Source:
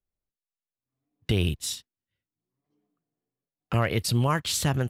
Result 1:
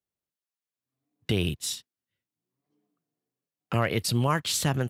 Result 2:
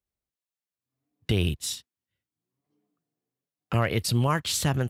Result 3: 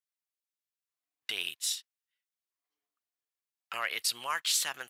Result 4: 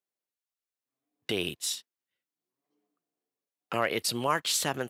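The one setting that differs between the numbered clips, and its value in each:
high-pass filter, corner frequency: 110, 43, 1,400, 340 Hertz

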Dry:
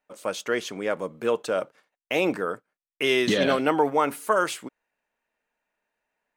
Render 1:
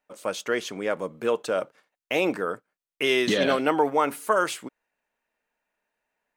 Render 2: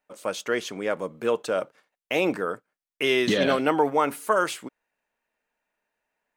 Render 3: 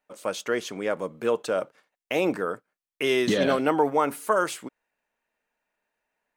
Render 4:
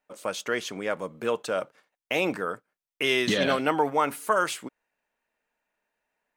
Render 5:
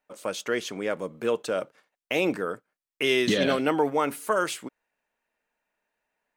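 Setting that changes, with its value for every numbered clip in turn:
dynamic equaliser, frequency: 110, 8,100, 2,800, 370, 940 Hertz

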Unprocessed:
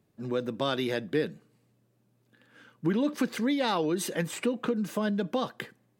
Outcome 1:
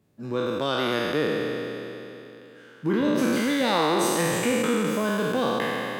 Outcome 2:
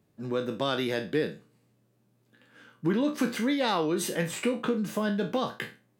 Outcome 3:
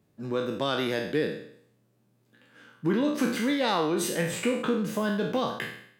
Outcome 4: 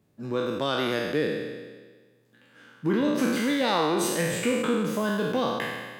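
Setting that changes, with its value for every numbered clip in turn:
peak hold with a decay on every bin, RT60: 3.18, 0.3, 0.65, 1.46 seconds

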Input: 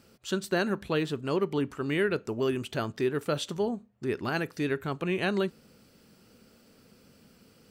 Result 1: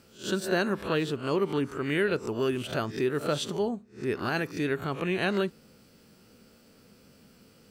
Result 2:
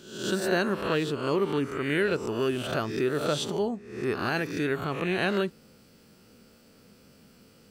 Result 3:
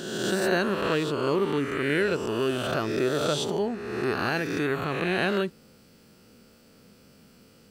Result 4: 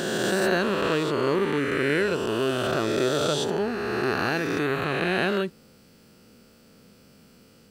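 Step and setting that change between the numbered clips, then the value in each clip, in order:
peak hold with a rise ahead of every peak, rising 60 dB in: 0.33, 0.69, 1.48, 3.16 seconds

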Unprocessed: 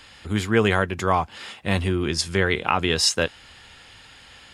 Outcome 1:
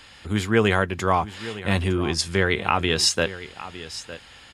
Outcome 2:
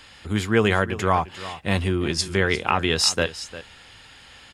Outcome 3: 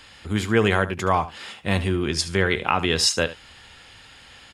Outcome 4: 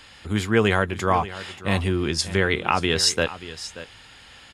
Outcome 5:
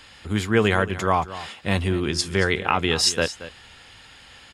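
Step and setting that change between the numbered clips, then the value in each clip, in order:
single-tap delay, delay time: 909, 351, 73, 582, 227 milliseconds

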